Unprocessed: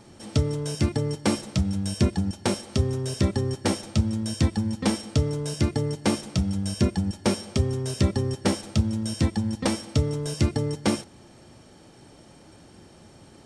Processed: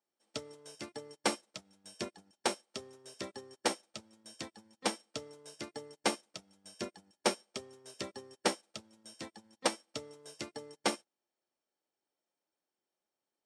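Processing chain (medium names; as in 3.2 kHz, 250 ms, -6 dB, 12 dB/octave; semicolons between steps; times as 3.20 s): high-pass 460 Hz 12 dB/octave; upward expansion 2.5:1, over -48 dBFS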